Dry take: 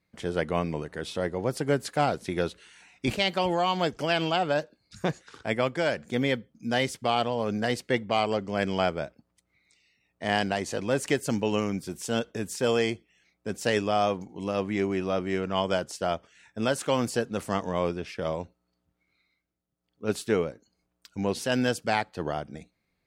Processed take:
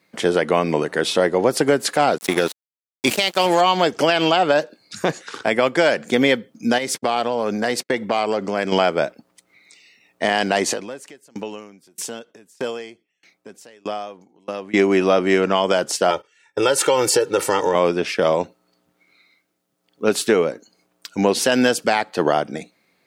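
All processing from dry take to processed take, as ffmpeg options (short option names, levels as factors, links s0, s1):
-filter_complex "[0:a]asettb=1/sr,asplit=3[s0][s1][s2];[s0]atrim=end=2.184[s3];[s1]atrim=start=2.18:end=3.61,asetpts=PTS-STARTPTS,afade=t=in:d=0.004:c=qsin,afade=t=out:st=1.426:d=0.004:c=qsin,aemphasis=mode=production:type=50kf,aeval=exprs='sgn(val(0))*max(abs(val(0))-0.0126,0)':c=same[s4];[s2]atrim=start=3.606[s5];[s3][s4]acrossfade=d=0.004:c1=hsin:c2=qsin[s6];[s6][s5]acrossfade=d=0.004:c1=qsin:c2=hsin,asettb=1/sr,asplit=3[s7][s8][s9];[s7]atrim=end=6.784[s10];[s8]atrim=start=6.78:end=8.72,asetpts=PTS-STARTPTS,afade=t=in:d=0.004:c=qsin,afade=t=out:st=1.936:d=0.004:c=qsin,equalizer=f=3000:t=o:w=0.22:g=-5,acompressor=threshold=0.0282:ratio=5:attack=3.2:release=140:knee=1:detection=peak,agate=range=0.0178:threshold=0.00501:ratio=16:release=100:detection=peak[s11];[s9]atrim=start=8.716[s12];[s10][s11]acrossfade=d=0.004:c1=hsin:c2=qsin[s13];[s13][s12]acrossfade=d=0.004:c1=qsin:c2=hsin,asettb=1/sr,asplit=3[s14][s15][s16];[s14]atrim=end=10.734[s17];[s15]atrim=start=10.73:end=14.74,asetpts=PTS-STARTPTS,afade=t=in:d=0.004:c=qsin,afade=t=out:st=4.006:d=0.004:c=qsin,acompressor=threshold=0.01:ratio=2.5:attack=3.2:release=140:knee=1:detection=peak,aeval=exprs='val(0)*pow(10,-30*if(lt(mod(1.6*n/s,1),2*abs(1.6)/1000),1-mod(1.6*n/s,1)/(2*abs(1.6)/1000),(mod(1.6*n/s,1)-2*abs(1.6)/1000)/(1-2*abs(1.6)/1000))/20)':c=same[s18];[s16]atrim=start=14.736[s19];[s17][s18]acrossfade=d=0.004:c1=hsin:c2=qsin[s20];[s20][s19]acrossfade=d=0.004:c1=qsin:c2=hsin,asettb=1/sr,asplit=3[s21][s22][s23];[s21]atrim=end=16.104[s24];[s22]atrim=start=16.1:end=17.75,asetpts=PTS-STARTPTS,afade=t=in:d=0.004:c=qsin,afade=t=out:st=1.646:d=0.004:c=qsin,aecho=1:1:2.2:0.99,atrim=end_sample=72765,agate=range=0.112:threshold=0.00501:ratio=16:release=100:detection=peak,acompressor=threshold=0.0398:ratio=3:attack=3.2:release=140:knee=1:detection=peak[s25];[s23]atrim=start=17.746[s26];[s24][s25]acrossfade=d=0.004:c1=hsin:c2=qsin[s27];[s27][s26]acrossfade=d=0.004:c1=qsin:c2=hsin,highpass=250,acompressor=threshold=0.0447:ratio=6,alimiter=level_in=9.44:limit=0.891:release=50:level=0:latency=1,volume=0.631"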